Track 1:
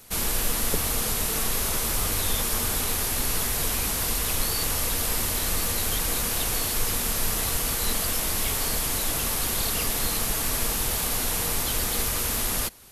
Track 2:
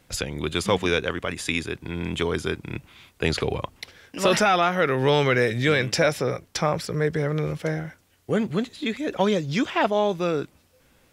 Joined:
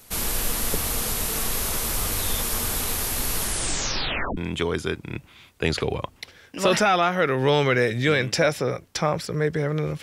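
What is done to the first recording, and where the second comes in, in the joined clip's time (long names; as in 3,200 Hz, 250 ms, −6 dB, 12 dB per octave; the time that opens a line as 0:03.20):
track 1
0:03.38: tape stop 0.99 s
0:04.37: continue with track 2 from 0:01.97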